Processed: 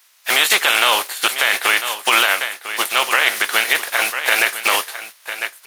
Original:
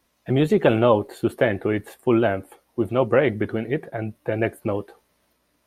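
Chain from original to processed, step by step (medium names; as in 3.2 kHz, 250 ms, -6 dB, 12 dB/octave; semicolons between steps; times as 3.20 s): spectral contrast reduction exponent 0.49; high-pass 1.3 kHz 12 dB/octave; gain riding within 3 dB 0.5 s; delay 998 ms -14 dB; loudness maximiser +15.5 dB; trim -1 dB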